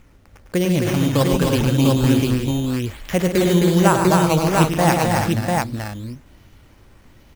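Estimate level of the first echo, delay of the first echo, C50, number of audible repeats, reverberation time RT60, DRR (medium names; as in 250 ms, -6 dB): -7.0 dB, 102 ms, no reverb, 6, no reverb, no reverb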